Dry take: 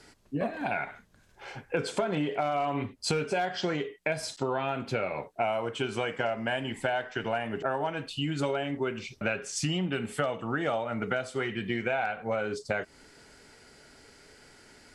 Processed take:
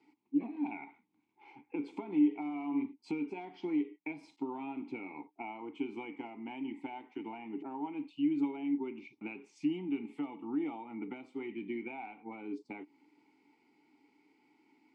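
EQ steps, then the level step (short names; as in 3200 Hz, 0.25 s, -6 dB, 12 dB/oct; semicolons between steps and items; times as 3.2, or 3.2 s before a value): HPF 130 Hz; dynamic EQ 290 Hz, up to +6 dB, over -45 dBFS, Q 0.96; vowel filter u; 0.0 dB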